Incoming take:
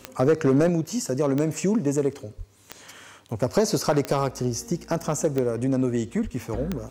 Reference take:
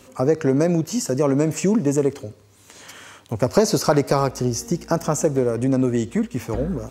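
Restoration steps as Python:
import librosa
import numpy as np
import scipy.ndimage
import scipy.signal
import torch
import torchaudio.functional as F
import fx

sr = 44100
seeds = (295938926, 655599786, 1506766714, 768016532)

y = fx.fix_declip(x, sr, threshold_db=-13.0)
y = fx.fix_declick_ar(y, sr, threshold=10.0)
y = fx.highpass(y, sr, hz=140.0, slope=24, at=(2.37, 2.49), fade=0.02)
y = fx.highpass(y, sr, hz=140.0, slope=24, at=(6.23, 6.35), fade=0.02)
y = fx.gain(y, sr, db=fx.steps((0.0, 0.0), (0.69, 4.0)))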